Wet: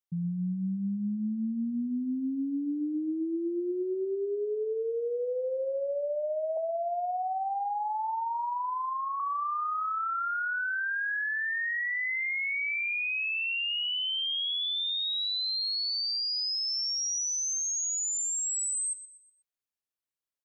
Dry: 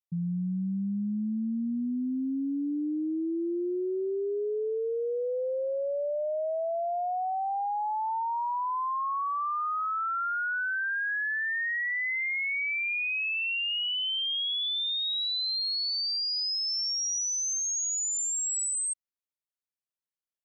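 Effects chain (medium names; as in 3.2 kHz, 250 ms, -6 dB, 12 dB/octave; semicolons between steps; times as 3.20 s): 6.57–9.20 s: inverse Chebyshev low-pass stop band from 5.2 kHz, stop band 70 dB; feedback delay 122 ms, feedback 40%, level -14.5 dB; trim -1 dB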